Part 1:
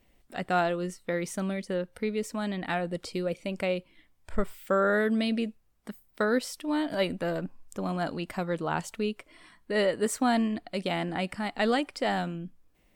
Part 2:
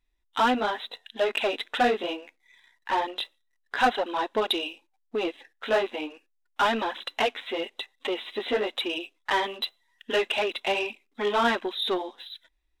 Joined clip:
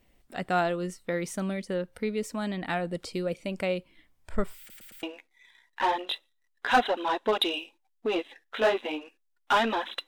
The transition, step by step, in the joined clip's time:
part 1
4.59 stutter in place 0.11 s, 4 plays
5.03 switch to part 2 from 2.12 s

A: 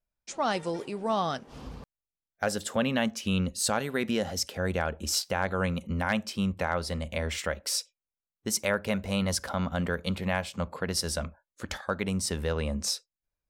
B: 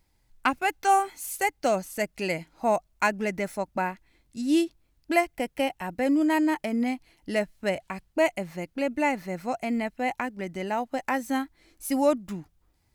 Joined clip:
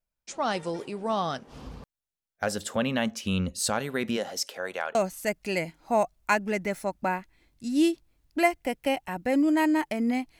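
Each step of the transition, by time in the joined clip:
A
4.16–4.95 HPF 290 Hz -> 690 Hz
4.95 switch to B from 1.68 s

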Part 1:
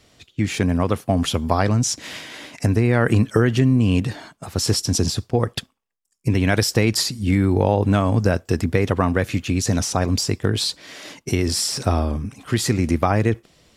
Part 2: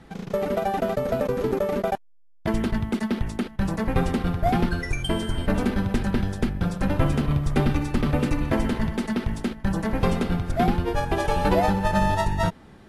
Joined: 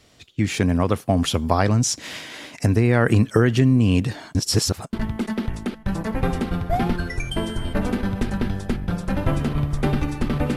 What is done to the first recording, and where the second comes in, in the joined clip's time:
part 1
4.35–4.93 reverse
4.93 switch to part 2 from 2.66 s

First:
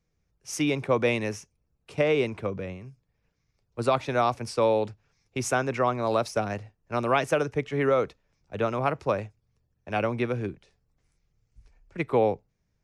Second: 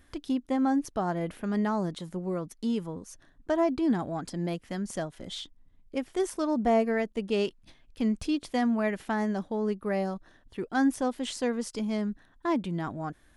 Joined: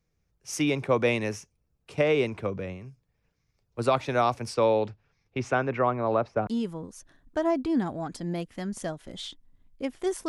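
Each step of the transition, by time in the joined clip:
first
4.54–6.47 LPF 6600 Hz -> 1400 Hz
6.47 switch to second from 2.6 s

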